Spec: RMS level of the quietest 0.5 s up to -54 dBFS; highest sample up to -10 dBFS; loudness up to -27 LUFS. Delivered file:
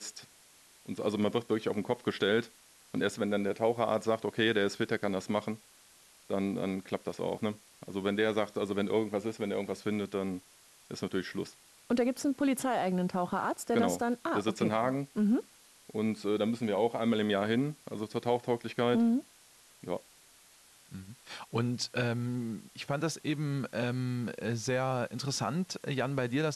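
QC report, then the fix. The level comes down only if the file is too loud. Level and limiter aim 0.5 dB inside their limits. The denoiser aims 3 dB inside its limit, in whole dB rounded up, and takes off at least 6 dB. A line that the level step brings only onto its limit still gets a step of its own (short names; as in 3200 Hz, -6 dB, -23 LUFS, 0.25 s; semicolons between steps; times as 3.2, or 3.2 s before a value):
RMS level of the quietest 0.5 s -60 dBFS: OK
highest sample -15.5 dBFS: OK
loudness -32.5 LUFS: OK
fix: none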